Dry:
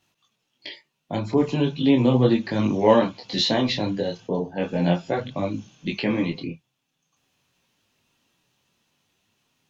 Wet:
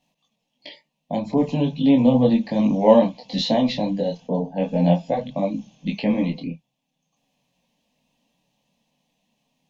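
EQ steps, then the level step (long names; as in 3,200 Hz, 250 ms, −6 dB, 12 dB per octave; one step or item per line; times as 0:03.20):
high-shelf EQ 2,800 Hz −10.5 dB
phaser with its sweep stopped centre 370 Hz, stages 6
+5.0 dB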